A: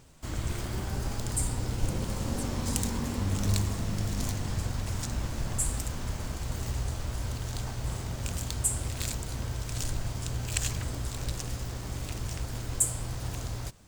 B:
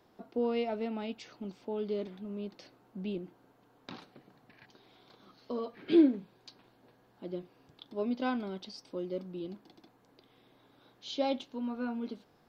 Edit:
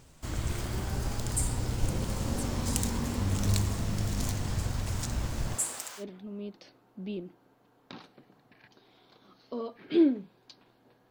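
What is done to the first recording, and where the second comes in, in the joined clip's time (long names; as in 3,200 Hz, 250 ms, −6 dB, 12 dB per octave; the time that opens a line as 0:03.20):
A
0:05.54–0:06.05: high-pass filter 260 Hz → 1,300 Hz
0:06.01: continue with B from 0:01.99, crossfade 0.08 s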